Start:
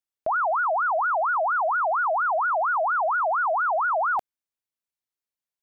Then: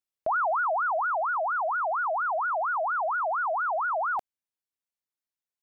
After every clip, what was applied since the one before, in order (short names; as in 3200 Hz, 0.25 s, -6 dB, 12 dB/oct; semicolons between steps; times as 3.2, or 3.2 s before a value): vocal rider 2 s; gain -4 dB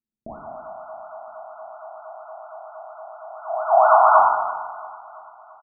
low-pass sweep 240 Hz -> 1000 Hz, 3.26–3.88; feedback echo 0.338 s, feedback 58%, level -21 dB; plate-style reverb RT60 1.4 s, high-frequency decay 0.85×, DRR -4.5 dB; gain +4 dB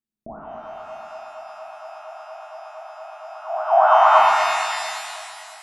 shimmer reverb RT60 2.1 s, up +12 st, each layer -8 dB, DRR 3.5 dB; gain -1 dB